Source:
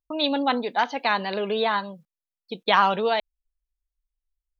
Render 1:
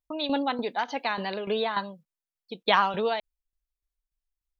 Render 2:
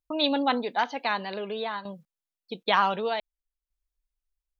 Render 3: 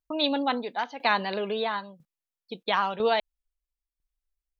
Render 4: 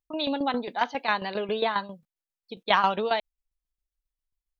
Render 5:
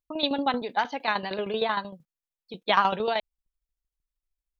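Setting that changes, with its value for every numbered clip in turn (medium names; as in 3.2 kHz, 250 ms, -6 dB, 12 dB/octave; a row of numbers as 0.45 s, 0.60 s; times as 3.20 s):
tremolo, rate: 3.4 Hz, 0.54 Hz, 1 Hz, 7.4 Hz, 13 Hz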